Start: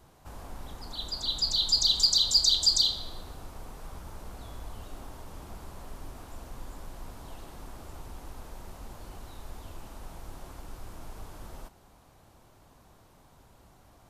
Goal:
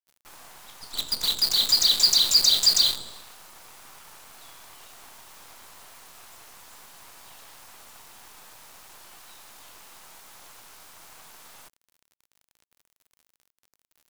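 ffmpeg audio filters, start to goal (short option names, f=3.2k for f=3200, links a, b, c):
-filter_complex "[0:a]highpass=1k,highshelf=f=2.1k:g=3,asplit=2[a][b];[b]acompressor=threshold=-33dB:ratio=10,volume=1.5dB[c];[a][c]amix=inputs=2:normalize=0,acrusher=bits=5:dc=4:mix=0:aa=0.000001"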